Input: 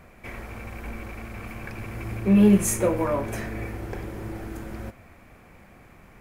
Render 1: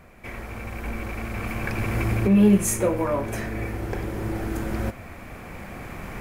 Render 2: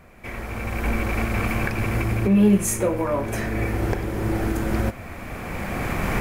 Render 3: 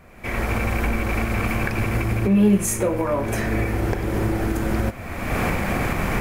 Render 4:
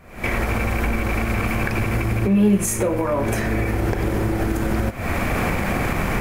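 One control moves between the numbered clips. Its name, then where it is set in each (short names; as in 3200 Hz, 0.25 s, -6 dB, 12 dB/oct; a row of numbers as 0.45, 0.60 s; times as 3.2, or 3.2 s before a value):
recorder AGC, rising by: 5.1, 14, 36, 90 dB/s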